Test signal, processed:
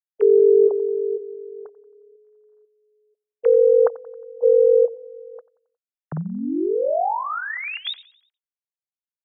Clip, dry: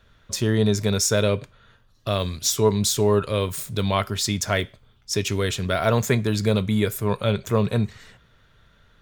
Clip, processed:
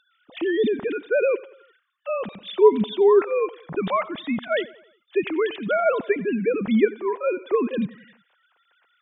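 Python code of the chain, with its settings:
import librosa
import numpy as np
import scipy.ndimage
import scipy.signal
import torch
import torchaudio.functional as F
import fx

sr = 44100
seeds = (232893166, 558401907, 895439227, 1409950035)

p1 = fx.sine_speech(x, sr)
y = p1 + fx.echo_feedback(p1, sr, ms=90, feedback_pct=49, wet_db=-20.5, dry=0)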